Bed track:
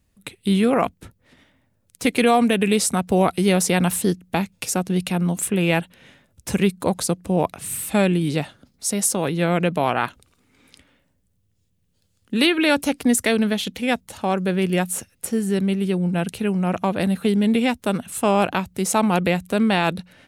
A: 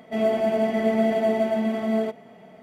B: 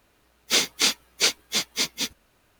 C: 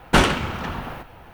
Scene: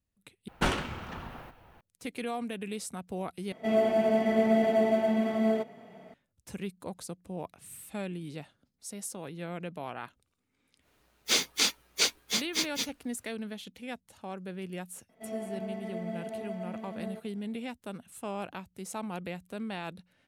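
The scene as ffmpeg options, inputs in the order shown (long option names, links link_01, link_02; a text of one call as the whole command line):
ffmpeg -i bed.wav -i cue0.wav -i cue1.wav -i cue2.wav -filter_complex "[1:a]asplit=2[link_01][link_02];[0:a]volume=-18.5dB,asplit=3[link_03][link_04][link_05];[link_03]atrim=end=0.484[link_06];[3:a]atrim=end=1.33,asetpts=PTS-STARTPTS,volume=-12dB[link_07];[link_04]atrim=start=1.806:end=3.524[link_08];[link_01]atrim=end=2.62,asetpts=PTS-STARTPTS,volume=-3dB[link_09];[link_05]atrim=start=6.136[link_10];[2:a]atrim=end=2.59,asetpts=PTS-STARTPTS,volume=-5dB,afade=type=in:duration=0.1,afade=type=out:start_time=2.49:duration=0.1,adelay=10780[link_11];[link_02]atrim=end=2.62,asetpts=PTS-STARTPTS,volume=-17dB,afade=type=in:duration=0.004:curve=hsin,afade=type=out:start_time=2.616:duration=0.004:curve=hsin,adelay=15090[link_12];[link_06][link_07]acrossfade=duration=0.004:curve1=hsin:curve2=hsin[link_13];[link_13][link_08]acrossfade=duration=0.004:curve1=hsin:curve2=hsin[link_14];[link_14][link_09]acrossfade=duration=0.004:curve1=hsin:curve2=hsin[link_15];[link_15][link_10]acrossfade=duration=0.004:curve1=hsin:curve2=hsin[link_16];[link_16][link_11][link_12]amix=inputs=3:normalize=0" out.wav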